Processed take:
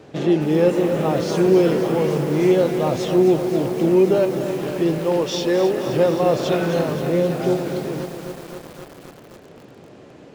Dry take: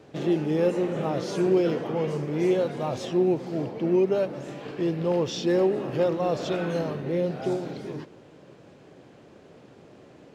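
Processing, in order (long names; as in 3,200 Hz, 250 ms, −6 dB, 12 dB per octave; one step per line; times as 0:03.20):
0:04.98–0:05.87: high-pass filter 360 Hz 6 dB per octave
feedback echo at a low word length 262 ms, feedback 80%, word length 7 bits, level −9.5 dB
level +6.5 dB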